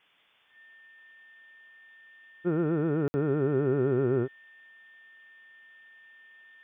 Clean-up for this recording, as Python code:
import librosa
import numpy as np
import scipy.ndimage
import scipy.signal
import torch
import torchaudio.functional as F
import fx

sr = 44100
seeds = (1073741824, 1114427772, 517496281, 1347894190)

y = fx.notch(x, sr, hz=1800.0, q=30.0)
y = fx.fix_ambience(y, sr, seeds[0], print_start_s=0.0, print_end_s=0.5, start_s=3.08, end_s=3.14)
y = fx.noise_reduce(y, sr, print_start_s=0.0, print_end_s=0.5, reduce_db=20.0)